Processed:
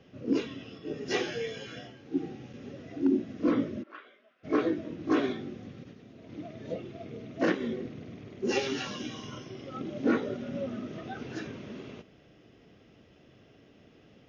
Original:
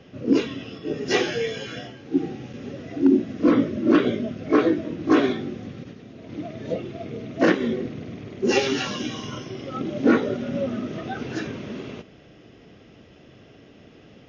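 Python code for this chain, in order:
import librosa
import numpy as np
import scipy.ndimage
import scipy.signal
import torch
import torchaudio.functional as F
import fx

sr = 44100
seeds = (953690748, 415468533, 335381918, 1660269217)

y = fx.ladder_bandpass(x, sr, hz=1600.0, resonance_pct=20, at=(3.82, 4.43), fade=0.02)
y = F.gain(torch.from_numpy(y), -8.5).numpy()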